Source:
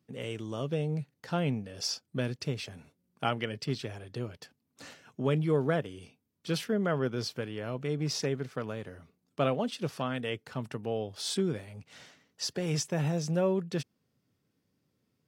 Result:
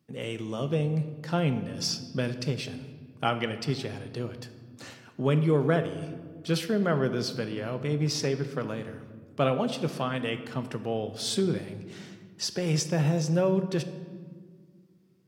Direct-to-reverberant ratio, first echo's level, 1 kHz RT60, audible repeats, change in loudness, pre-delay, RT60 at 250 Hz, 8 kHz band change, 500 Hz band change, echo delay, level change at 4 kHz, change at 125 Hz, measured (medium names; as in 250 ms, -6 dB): 9.0 dB, no echo, 1.5 s, no echo, +4.0 dB, 4 ms, 2.7 s, +3.0 dB, +3.5 dB, no echo, +3.5 dB, +4.5 dB